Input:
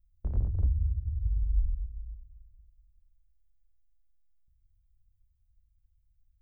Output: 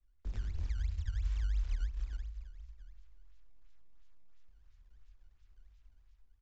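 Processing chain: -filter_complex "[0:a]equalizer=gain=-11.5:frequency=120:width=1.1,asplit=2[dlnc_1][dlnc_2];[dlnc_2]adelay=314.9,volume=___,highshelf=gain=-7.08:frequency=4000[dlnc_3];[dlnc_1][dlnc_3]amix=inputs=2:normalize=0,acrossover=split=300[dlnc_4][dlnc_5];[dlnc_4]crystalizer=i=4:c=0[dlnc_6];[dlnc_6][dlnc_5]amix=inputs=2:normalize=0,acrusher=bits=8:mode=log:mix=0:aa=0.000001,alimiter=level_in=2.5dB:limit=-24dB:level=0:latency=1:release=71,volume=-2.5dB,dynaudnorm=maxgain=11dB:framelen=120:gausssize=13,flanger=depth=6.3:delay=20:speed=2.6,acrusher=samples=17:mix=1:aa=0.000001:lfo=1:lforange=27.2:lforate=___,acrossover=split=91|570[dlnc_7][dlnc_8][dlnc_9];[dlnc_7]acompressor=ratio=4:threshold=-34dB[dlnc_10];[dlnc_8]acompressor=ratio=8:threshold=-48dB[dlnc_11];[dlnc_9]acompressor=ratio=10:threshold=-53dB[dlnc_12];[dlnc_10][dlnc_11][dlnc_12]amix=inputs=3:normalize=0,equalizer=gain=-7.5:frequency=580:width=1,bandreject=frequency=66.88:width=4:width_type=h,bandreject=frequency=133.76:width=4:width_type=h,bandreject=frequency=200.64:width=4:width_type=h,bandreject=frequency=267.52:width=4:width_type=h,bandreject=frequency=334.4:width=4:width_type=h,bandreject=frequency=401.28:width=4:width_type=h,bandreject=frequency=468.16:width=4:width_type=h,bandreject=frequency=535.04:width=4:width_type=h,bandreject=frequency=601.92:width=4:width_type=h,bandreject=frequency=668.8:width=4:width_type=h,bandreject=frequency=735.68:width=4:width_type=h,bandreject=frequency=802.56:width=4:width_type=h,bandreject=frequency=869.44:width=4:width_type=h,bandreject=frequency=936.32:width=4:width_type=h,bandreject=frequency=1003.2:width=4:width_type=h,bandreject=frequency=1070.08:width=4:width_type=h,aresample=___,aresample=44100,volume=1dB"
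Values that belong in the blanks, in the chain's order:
-19dB, 2.9, 16000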